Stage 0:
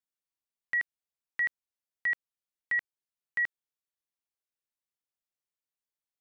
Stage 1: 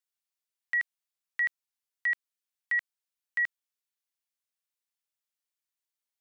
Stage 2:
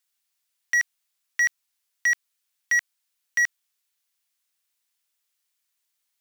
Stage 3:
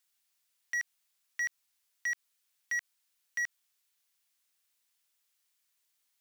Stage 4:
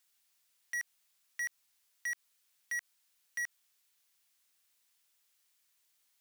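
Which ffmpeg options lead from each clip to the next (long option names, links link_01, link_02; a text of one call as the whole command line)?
ffmpeg -i in.wav -af "highpass=frequency=1500:poles=1,volume=3dB" out.wav
ffmpeg -i in.wav -af "acrusher=bits=6:mode=log:mix=0:aa=0.000001,tiltshelf=frequency=770:gain=-6,aeval=exprs='0.133*sin(PI/2*1.41*val(0)/0.133)':channel_layout=same" out.wav
ffmpeg -i in.wav -af "alimiter=level_in=5dB:limit=-24dB:level=0:latency=1:release=64,volume=-5dB" out.wav
ffmpeg -i in.wav -af "asoftclip=type=tanh:threshold=-36.5dB,volume=3dB" out.wav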